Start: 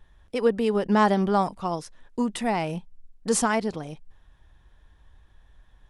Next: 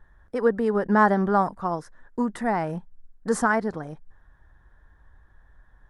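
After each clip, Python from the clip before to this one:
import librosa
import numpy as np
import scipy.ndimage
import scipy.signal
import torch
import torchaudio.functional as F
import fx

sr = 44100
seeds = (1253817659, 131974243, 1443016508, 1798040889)

y = fx.high_shelf_res(x, sr, hz=2100.0, db=-8.0, q=3.0)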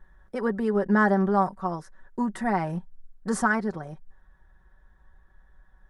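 y = x + 0.59 * np.pad(x, (int(5.3 * sr / 1000.0), 0))[:len(x)]
y = fx.rider(y, sr, range_db=4, speed_s=2.0)
y = y * 10.0 ** (-3.5 / 20.0)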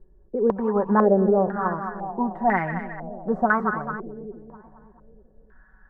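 y = fx.echo_split(x, sr, split_hz=540.0, low_ms=303, high_ms=218, feedback_pct=52, wet_db=-10)
y = fx.filter_held_lowpass(y, sr, hz=2.0, low_hz=410.0, high_hz=1900.0)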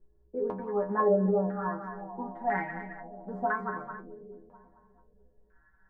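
y = fx.stiff_resonator(x, sr, f0_hz=61.0, decay_s=0.46, stiffness=0.008)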